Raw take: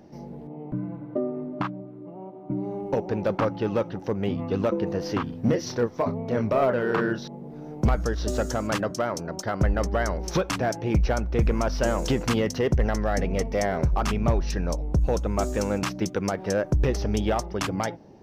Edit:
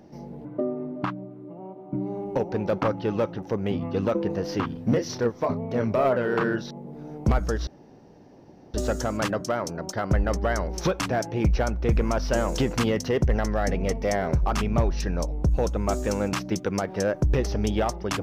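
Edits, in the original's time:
0.45–1.02 s: delete
8.24 s: insert room tone 1.07 s

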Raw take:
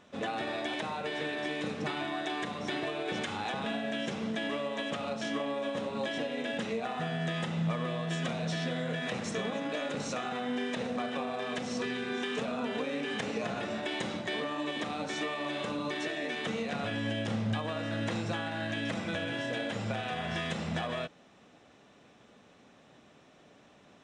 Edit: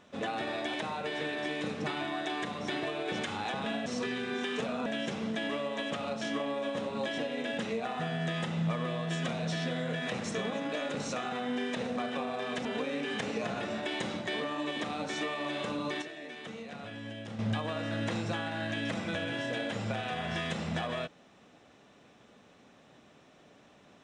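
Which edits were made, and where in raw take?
11.65–12.65 s: move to 3.86 s
16.02–17.39 s: gain -9 dB

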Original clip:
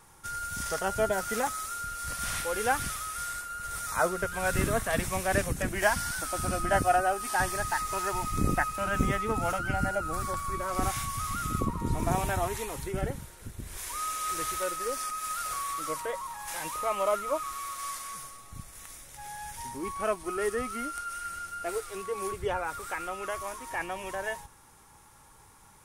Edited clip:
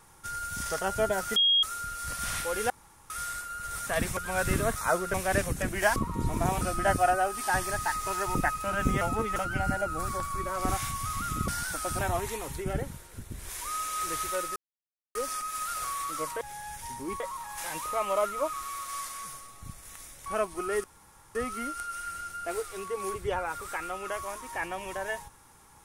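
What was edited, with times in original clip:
1.36–1.63 s: bleep 3.27 kHz -19.5 dBFS
2.70–3.10 s: room tone
3.87–4.25 s: swap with 4.84–5.14 s
5.96–6.47 s: swap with 11.62–12.27 s
8.21–8.49 s: delete
9.15–9.50 s: reverse
14.84 s: insert silence 0.59 s
19.16–19.95 s: move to 16.10 s
20.53 s: insert room tone 0.51 s

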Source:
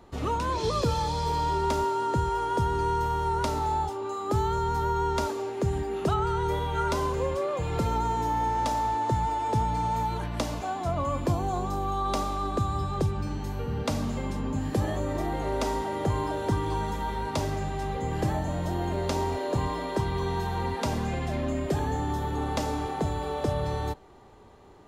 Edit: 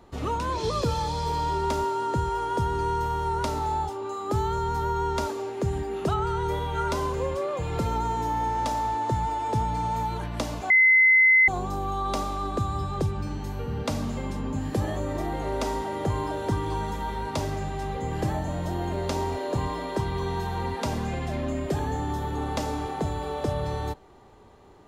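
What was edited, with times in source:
10.70–11.48 s: bleep 2.05 kHz -14 dBFS

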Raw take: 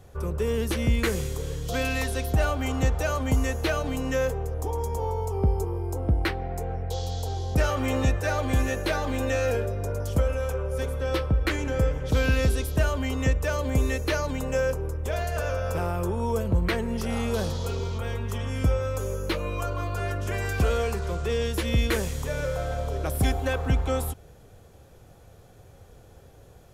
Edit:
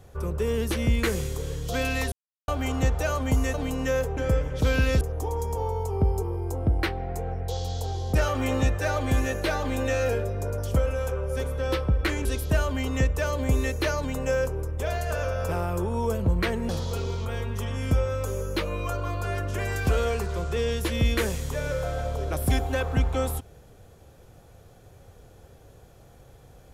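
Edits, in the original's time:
2.12–2.48 s: mute
3.54–3.80 s: delete
11.67–12.51 s: move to 4.43 s
16.95–17.42 s: delete

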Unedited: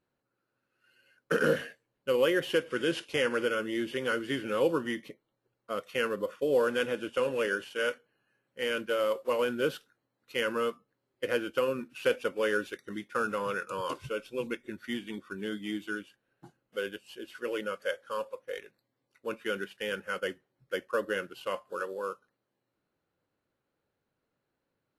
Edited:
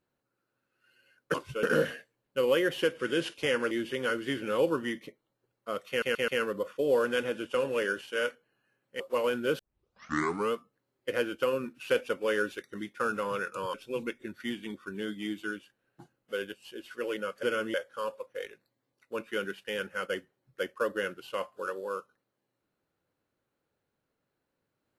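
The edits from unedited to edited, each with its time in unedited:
3.42–3.73 s: move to 17.87 s
5.91 s: stutter 0.13 s, 4 plays
8.63–9.15 s: delete
9.74 s: tape start 0.93 s
13.89–14.18 s: move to 1.34 s

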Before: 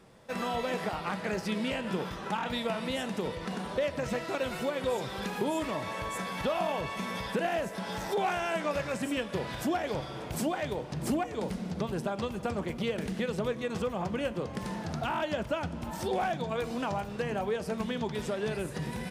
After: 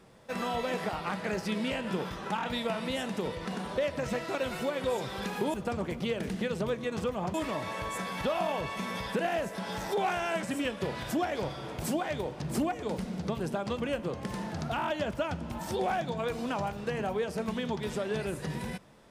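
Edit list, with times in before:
8.63–8.95 s: delete
12.32–14.12 s: move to 5.54 s

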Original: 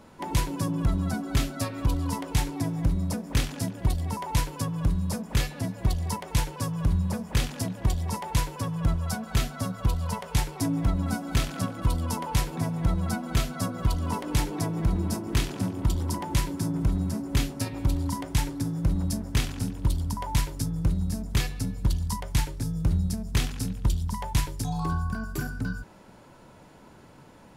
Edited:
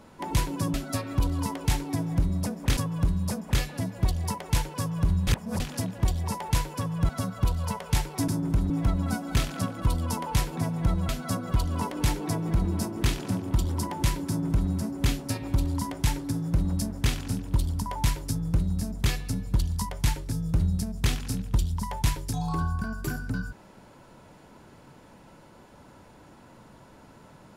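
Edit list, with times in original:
0.74–1.41 s: delete
3.44–4.59 s: delete
7.09–7.42 s: reverse
8.91–9.51 s: delete
13.09–13.40 s: delete
16.59–17.01 s: copy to 10.70 s

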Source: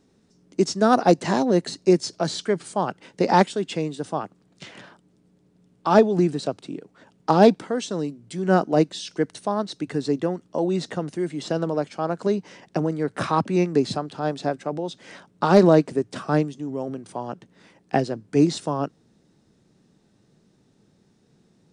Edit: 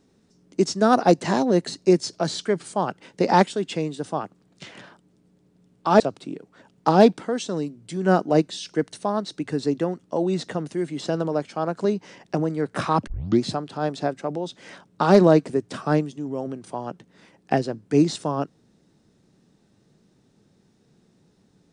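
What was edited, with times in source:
6.00–6.42 s: delete
13.49 s: tape start 0.35 s

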